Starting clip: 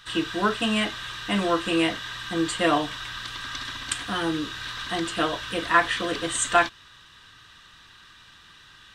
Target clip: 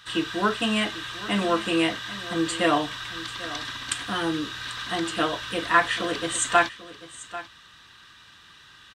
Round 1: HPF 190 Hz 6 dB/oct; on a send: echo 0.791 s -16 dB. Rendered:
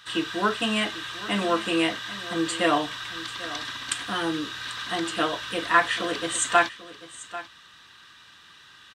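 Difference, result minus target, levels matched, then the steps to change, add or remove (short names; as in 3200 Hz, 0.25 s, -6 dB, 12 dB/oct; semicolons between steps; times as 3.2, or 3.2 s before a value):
125 Hz band -2.5 dB
change: HPF 68 Hz 6 dB/oct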